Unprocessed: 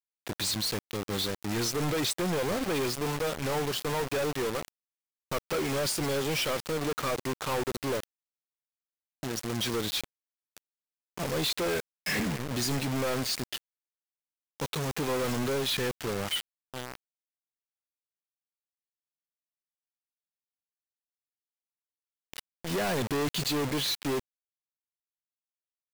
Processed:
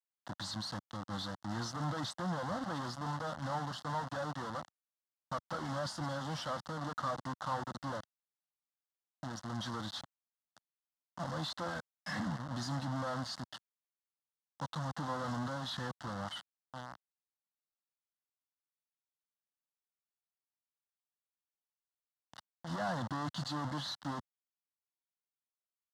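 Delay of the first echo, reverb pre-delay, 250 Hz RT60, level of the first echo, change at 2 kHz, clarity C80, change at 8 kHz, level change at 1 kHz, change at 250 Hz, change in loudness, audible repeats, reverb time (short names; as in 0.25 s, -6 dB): none, none, none, none, -9.5 dB, none, -16.0 dB, -2.5 dB, -8.0 dB, -9.0 dB, none, none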